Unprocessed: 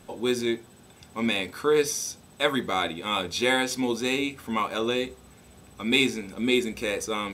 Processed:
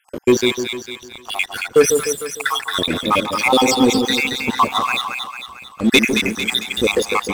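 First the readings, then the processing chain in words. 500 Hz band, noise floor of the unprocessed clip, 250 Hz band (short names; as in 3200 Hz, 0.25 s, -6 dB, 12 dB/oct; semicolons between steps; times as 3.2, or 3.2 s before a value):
+8.5 dB, -53 dBFS, +8.0 dB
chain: random spectral dropouts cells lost 71%; sample leveller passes 3; split-band echo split 970 Hz, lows 0.151 s, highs 0.224 s, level -5.5 dB; gain +4 dB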